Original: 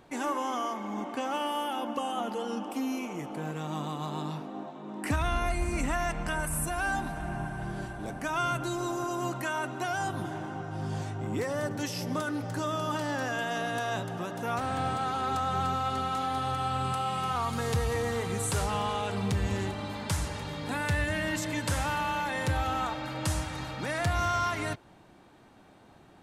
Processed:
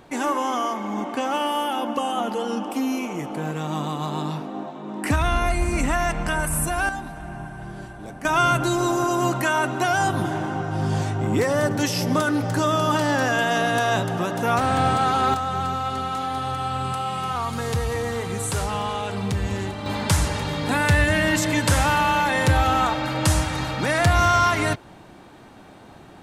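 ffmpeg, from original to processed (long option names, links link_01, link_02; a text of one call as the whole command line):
ffmpeg -i in.wav -af "asetnsamples=nb_out_samples=441:pad=0,asendcmd='6.89 volume volume 0dB;8.25 volume volume 10.5dB;15.34 volume volume 4dB;19.86 volume volume 10.5dB',volume=7.5dB" out.wav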